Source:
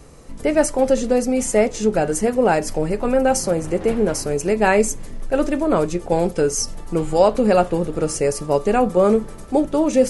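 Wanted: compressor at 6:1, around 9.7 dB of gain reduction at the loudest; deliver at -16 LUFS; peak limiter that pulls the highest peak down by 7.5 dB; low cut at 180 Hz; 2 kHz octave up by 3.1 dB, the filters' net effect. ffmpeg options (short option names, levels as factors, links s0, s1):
-af "highpass=180,equalizer=f=2000:t=o:g=4,acompressor=threshold=0.1:ratio=6,volume=3.76,alimiter=limit=0.501:level=0:latency=1"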